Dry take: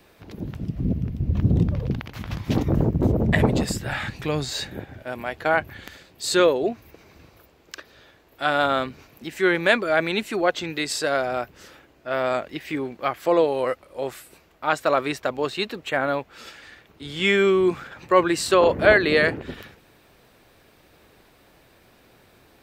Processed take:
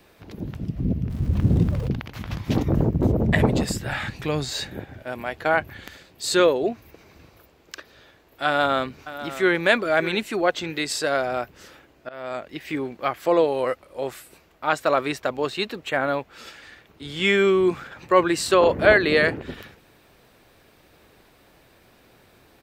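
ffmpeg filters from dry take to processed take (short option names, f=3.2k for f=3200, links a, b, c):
-filter_complex "[0:a]asettb=1/sr,asplit=3[a][b][c];[a]atrim=end=1.104[d];[b]atrim=start=1.1:end=1.88,asetpts=PTS-STARTPTS,afade=t=in:d=0.004:c=qsin,afade=t=out:st=0.776:d=0.004:c=qsin,aeval=exprs='val(0)+0.5*0.0158*sgn(val(0))':c=same[e];[c]atrim=start=1.876[f];[d][e]acrossfade=d=0.004:c1=hsin:c2=qsin[g];[g][f]acrossfade=d=0.004:c1=qsin:c2=hsin,asplit=2[h][i];[i]afade=t=in:st=8.46:d=0.01,afade=t=out:st=9.58:d=0.01,aecho=0:1:600|1200:0.211349|0.0317023[j];[h][j]amix=inputs=2:normalize=0,asplit=2[k][l];[k]atrim=end=12.09,asetpts=PTS-STARTPTS,afade=t=out:st=12.086:d=0.004:c=hsin:silence=0.105925[m];[l]atrim=start=12.09,asetpts=PTS-STARTPTS,afade=t=in:d=0.62:silence=0.105925[n];[m][n]concat=n=2:v=0:a=1"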